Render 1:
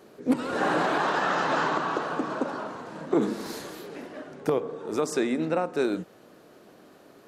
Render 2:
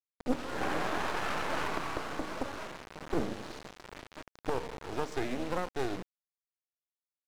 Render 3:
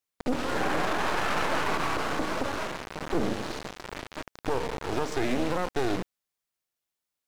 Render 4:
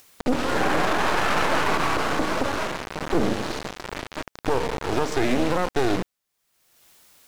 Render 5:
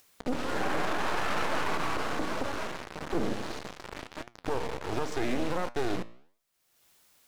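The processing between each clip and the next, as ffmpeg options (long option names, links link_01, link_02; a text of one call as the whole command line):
ffmpeg -i in.wav -af "acrusher=bits=3:dc=4:mix=0:aa=0.000001,adynamicsmooth=sensitivity=8:basefreq=2500,volume=-4dB" out.wav
ffmpeg -i in.wav -af "alimiter=level_in=1dB:limit=-24dB:level=0:latency=1:release=24,volume=-1dB,volume=9dB" out.wav
ffmpeg -i in.wav -af "acompressor=mode=upward:threshold=-38dB:ratio=2.5,volume=5.5dB" out.wav
ffmpeg -i in.wav -af "flanger=delay=8.3:depth=9.6:regen=84:speed=1.4:shape=sinusoidal,volume=-4dB" out.wav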